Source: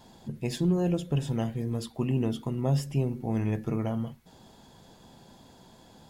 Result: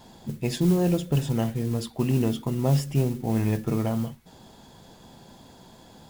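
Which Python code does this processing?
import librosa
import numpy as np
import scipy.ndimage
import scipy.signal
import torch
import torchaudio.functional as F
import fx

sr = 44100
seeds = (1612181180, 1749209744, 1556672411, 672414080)

y = fx.mod_noise(x, sr, seeds[0], snr_db=22)
y = y * 10.0 ** (4.0 / 20.0)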